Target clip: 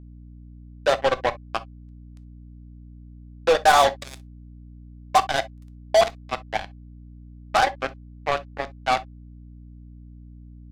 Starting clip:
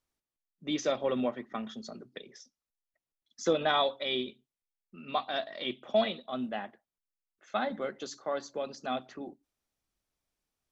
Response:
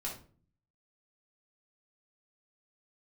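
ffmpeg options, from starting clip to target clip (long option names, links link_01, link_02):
-filter_complex "[0:a]highpass=frequency=480:width=0.5412,highpass=frequency=480:width=1.3066,equalizer=frequency=500:width_type=q:width=4:gain=6,equalizer=frequency=790:width_type=q:width=4:gain=9,equalizer=frequency=1100:width_type=q:width=4:gain=4,equalizer=frequency=1600:width_type=q:width=4:gain=6,equalizer=frequency=3000:width_type=q:width=4:gain=-10,equalizer=frequency=4300:width_type=q:width=4:gain=4,lowpass=frequency=5000:width=0.5412,lowpass=frequency=5000:width=1.3066,acrusher=bits=3:mix=0:aa=0.5,asplit=2[link_01][link_02];[1:a]atrim=start_sample=2205,atrim=end_sample=3087[link_03];[link_02][link_03]afir=irnorm=-1:irlink=0,volume=-10dB[link_04];[link_01][link_04]amix=inputs=2:normalize=0,aeval=exprs='val(0)+0.00501*(sin(2*PI*60*n/s)+sin(2*PI*2*60*n/s)/2+sin(2*PI*3*60*n/s)/3+sin(2*PI*4*60*n/s)/4+sin(2*PI*5*60*n/s)/5)':channel_layout=same,volume=4dB"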